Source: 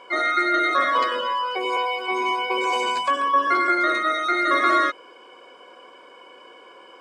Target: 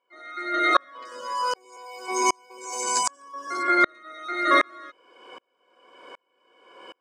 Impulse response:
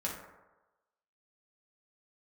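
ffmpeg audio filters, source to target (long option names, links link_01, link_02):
-filter_complex "[0:a]asettb=1/sr,asplit=3[link_01][link_02][link_03];[link_01]atrim=end=1.054[link_04];[link_02]atrim=start=1.05:end=3.63,asetpts=PTS-STARTPTS,afade=type=in:duration=0.004:curve=qsin,afade=type=out:start_time=2.576:duration=0.004:curve=qsin,highshelf=frequency=4500:width_type=q:width=3:gain=12.5[link_05];[link_03]atrim=start=3.626[link_06];[link_04][link_05]acrossfade=duration=0.004:curve1=hsin:curve2=qsin[link_07];[link_07][link_06]acrossfade=duration=0.004:curve1=qsin:curve2=hsin,aeval=exprs='val(0)*pow(10,-38*if(lt(mod(-1.3*n/s,1),2*abs(-1.3)/1000),1-mod(-1.3*n/s,1)/(2*abs(-1.3)/1000),(mod(-1.3*n/s,1)-2*abs(-1.3)/1000)/(1-2*abs(-1.3)/1000))/20)':channel_layout=same,volume=5.5dB"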